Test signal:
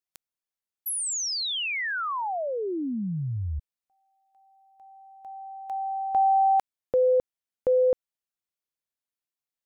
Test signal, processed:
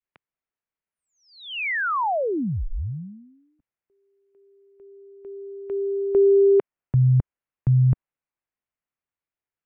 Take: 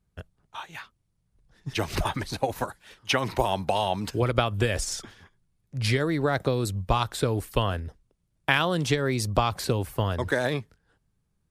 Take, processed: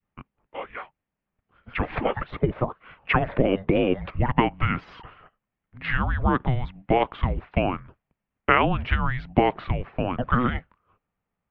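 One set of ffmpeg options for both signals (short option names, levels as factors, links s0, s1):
-af "adynamicequalizer=threshold=0.0126:dfrequency=1200:dqfactor=1.1:tfrequency=1200:tqfactor=1.1:attack=5:release=100:ratio=0.375:range=1.5:mode=boostabove:tftype=bell,highpass=f=260:t=q:w=0.5412,highpass=f=260:t=q:w=1.307,lowpass=f=3000:t=q:w=0.5176,lowpass=f=3000:t=q:w=0.7071,lowpass=f=3000:t=q:w=1.932,afreqshift=-380,volume=1.5"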